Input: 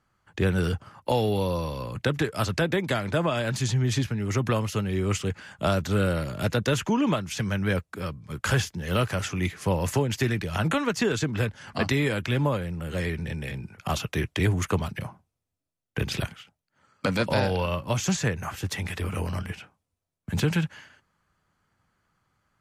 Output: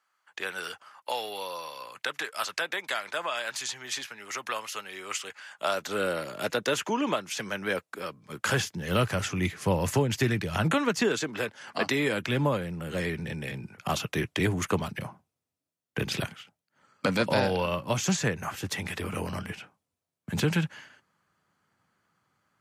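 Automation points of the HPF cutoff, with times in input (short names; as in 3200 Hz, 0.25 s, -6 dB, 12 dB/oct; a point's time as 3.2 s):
5.44 s 920 Hz
6.06 s 350 Hz
8.08 s 350 Hz
9.04 s 91 Hz
10.75 s 91 Hz
11.25 s 340 Hz
11.76 s 340 Hz
12.38 s 140 Hz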